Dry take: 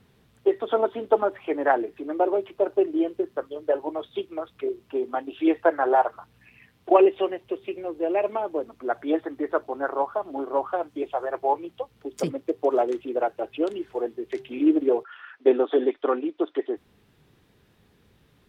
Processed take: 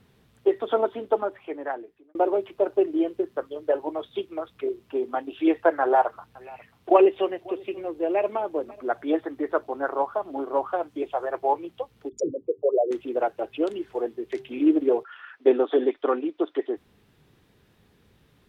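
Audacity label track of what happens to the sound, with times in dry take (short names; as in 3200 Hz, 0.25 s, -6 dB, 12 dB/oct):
0.730000	2.150000	fade out
5.810000	8.870000	echo 0.541 s -23 dB
12.090000	12.910000	formant sharpening exponent 3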